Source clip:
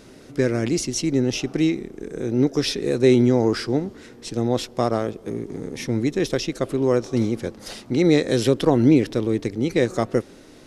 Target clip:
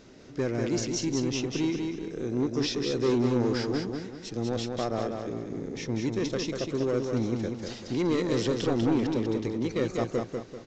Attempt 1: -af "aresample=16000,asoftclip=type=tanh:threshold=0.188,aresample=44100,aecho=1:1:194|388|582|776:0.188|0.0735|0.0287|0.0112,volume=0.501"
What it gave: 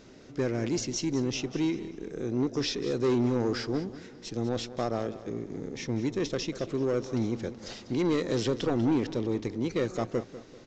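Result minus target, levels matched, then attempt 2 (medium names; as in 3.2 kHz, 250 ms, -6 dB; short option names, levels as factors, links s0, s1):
echo-to-direct -10 dB
-af "aresample=16000,asoftclip=type=tanh:threshold=0.188,aresample=44100,aecho=1:1:194|388|582|776|970:0.596|0.232|0.0906|0.0353|0.0138,volume=0.501"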